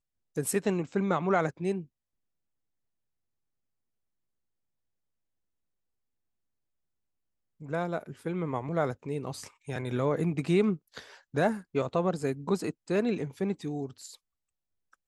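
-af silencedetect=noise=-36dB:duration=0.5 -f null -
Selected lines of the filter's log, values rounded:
silence_start: 1.82
silence_end: 7.63 | silence_duration: 5.81
silence_start: 14.06
silence_end: 15.07 | silence_duration: 1.01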